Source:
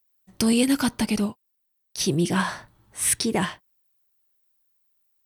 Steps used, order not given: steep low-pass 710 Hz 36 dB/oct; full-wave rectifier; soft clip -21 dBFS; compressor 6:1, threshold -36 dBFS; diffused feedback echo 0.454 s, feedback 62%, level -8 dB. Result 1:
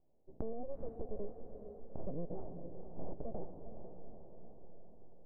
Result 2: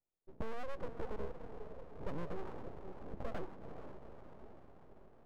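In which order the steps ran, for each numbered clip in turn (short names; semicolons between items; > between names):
full-wave rectifier > steep low-pass > compressor > diffused feedback echo > soft clip; steep low-pass > soft clip > compressor > diffused feedback echo > full-wave rectifier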